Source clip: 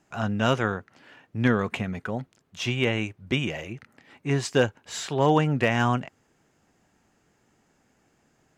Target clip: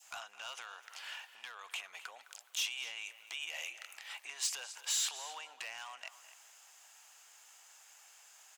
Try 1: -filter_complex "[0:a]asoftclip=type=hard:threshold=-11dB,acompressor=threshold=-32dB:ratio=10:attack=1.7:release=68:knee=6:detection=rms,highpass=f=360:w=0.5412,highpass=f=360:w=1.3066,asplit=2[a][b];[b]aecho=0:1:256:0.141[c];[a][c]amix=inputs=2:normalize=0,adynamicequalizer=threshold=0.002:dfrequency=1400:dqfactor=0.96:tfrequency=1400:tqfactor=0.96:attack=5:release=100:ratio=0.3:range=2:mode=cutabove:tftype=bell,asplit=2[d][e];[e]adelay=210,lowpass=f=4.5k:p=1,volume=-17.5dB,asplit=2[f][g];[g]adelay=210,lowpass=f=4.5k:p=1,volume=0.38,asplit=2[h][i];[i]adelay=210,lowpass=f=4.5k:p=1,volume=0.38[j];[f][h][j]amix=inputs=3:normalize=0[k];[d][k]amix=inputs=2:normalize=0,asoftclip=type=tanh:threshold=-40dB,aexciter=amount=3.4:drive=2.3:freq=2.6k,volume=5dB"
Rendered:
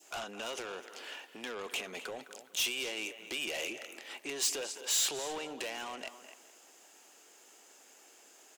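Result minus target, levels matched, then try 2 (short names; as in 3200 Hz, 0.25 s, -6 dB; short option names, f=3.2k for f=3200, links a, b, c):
500 Hz band +14.0 dB; compressor: peak gain reduction -7 dB
-filter_complex "[0:a]asoftclip=type=hard:threshold=-11dB,acompressor=threshold=-40dB:ratio=10:attack=1.7:release=68:knee=6:detection=rms,highpass=f=810:w=0.5412,highpass=f=810:w=1.3066,asplit=2[a][b];[b]aecho=0:1:256:0.141[c];[a][c]amix=inputs=2:normalize=0,adynamicequalizer=threshold=0.002:dfrequency=1400:dqfactor=0.96:tfrequency=1400:tqfactor=0.96:attack=5:release=100:ratio=0.3:range=2:mode=cutabove:tftype=bell,asplit=2[d][e];[e]adelay=210,lowpass=f=4.5k:p=1,volume=-17.5dB,asplit=2[f][g];[g]adelay=210,lowpass=f=4.5k:p=1,volume=0.38,asplit=2[h][i];[i]adelay=210,lowpass=f=4.5k:p=1,volume=0.38[j];[f][h][j]amix=inputs=3:normalize=0[k];[d][k]amix=inputs=2:normalize=0,asoftclip=type=tanh:threshold=-40dB,aexciter=amount=3.4:drive=2.3:freq=2.6k,volume=5dB"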